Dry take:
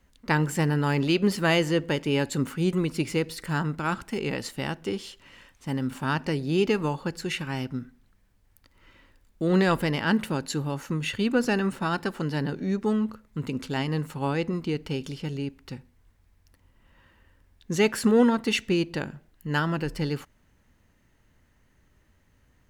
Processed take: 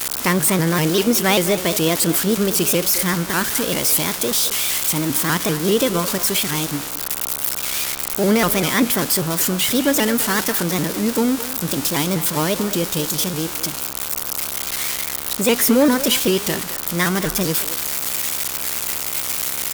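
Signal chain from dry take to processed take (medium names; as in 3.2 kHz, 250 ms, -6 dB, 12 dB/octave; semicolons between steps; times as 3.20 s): zero-crossing glitches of -16 dBFS; in parallel at -3 dB: peak limiter -16.5 dBFS, peak gain reduction 8 dB; on the sum: speakerphone echo 250 ms, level -11 dB; mains buzz 60 Hz, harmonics 22, -40 dBFS 0 dB/octave; tape speed +15%; vibrato with a chosen wave saw up 5.1 Hz, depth 160 cents; trim +2 dB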